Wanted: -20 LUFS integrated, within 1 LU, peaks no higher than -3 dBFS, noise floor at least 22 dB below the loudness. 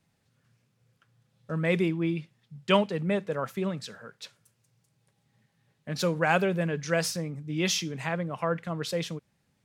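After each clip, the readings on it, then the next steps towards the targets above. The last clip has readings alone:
loudness -29.0 LUFS; peak -8.5 dBFS; loudness target -20.0 LUFS
-> gain +9 dB; limiter -3 dBFS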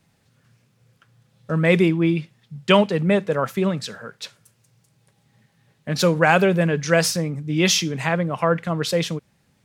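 loudness -20.0 LUFS; peak -3.0 dBFS; noise floor -64 dBFS

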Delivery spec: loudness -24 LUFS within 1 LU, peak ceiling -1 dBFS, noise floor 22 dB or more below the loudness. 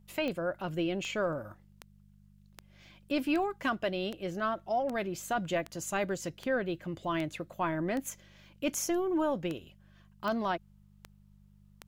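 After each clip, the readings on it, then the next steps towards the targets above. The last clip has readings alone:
clicks 16; hum 50 Hz; harmonics up to 200 Hz; hum level -54 dBFS; loudness -33.5 LUFS; peak -19.0 dBFS; loudness target -24.0 LUFS
-> de-click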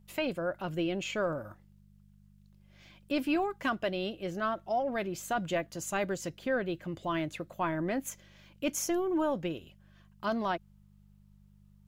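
clicks 0; hum 50 Hz; harmonics up to 200 Hz; hum level -54 dBFS
-> de-hum 50 Hz, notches 4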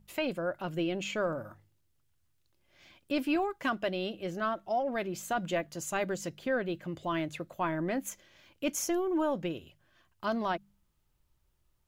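hum none; loudness -33.5 LUFS; peak -20.0 dBFS; loudness target -24.0 LUFS
-> gain +9.5 dB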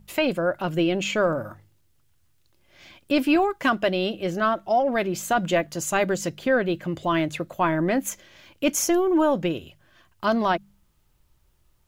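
loudness -24.0 LUFS; peak -10.5 dBFS; noise floor -63 dBFS

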